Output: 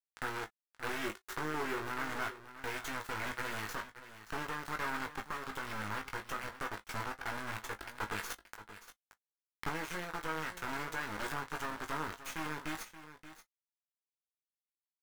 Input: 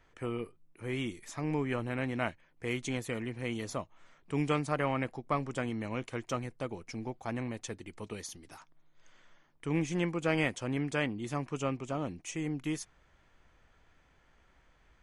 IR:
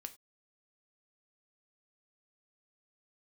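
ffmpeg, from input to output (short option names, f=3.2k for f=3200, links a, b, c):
-filter_complex "[0:a]acompressor=threshold=-36dB:ratio=2.5,acrusher=bits=4:dc=4:mix=0:aa=0.000001[a];[1:a]atrim=start_sample=2205,atrim=end_sample=3528,asetrate=79380,aresample=44100[b];[a][b]afir=irnorm=-1:irlink=0,alimiter=level_in=19dB:limit=-24dB:level=0:latency=1:release=296,volume=-19dB,asettb=1/sr,asplit=3[c][d][e];[c]atrim=end=1.034[f];[d]atrim=start=1.03:end=1.89,asetpts=PTS-STARTPTS,afade=t=in:d=0.004:c=qsin,afade=t=out:st=0.856:d=0.004:c=qsin,equalizer=f=380:w=5.7:g=14[g];[e]atrim=start=1.886[h];[f][g]acrossfade=d=0.004:c1=hsin:c2=qsin[i];[i][h]acrossfade=d=0.004:c1=qsin:c2=hsin,asettb=1/sr,asplit=3[j][k][l];[j]atrim=end=8.304[m];[k]atrim=start=8.3:end=9.69,asetpts=PTS-STARTPTS,afade=t=in:d=0.004:c=qsin,afade=t=out:st=1.386:d=0.004:c=qsin,aeval=exprs='0.0075*(cos(1*acos(clip(val(0)/0.0075,-1,1)))-cos(1*PI/2))+0.00237*(cos(6*acos(clip(val(0)/0.0075,-1,1)))-cos(6*PI/2))':c=same[n];[l]atrim=start=9.686[o];[m][n]acrossfade=d=0.004:c1=hsin:c2=qsin[p];[p][o]acrossfade=d=0.004:c1=qsin:c2=hsin,equalizer=f=1.4k:w=0.99:g=14,asplit=2[q][r];[r]adelay=19,volume=-7dB[s];[q][s]amix=inputs=2:normalize=0,aecho=1:1:577:0.211,volume=10.5dB"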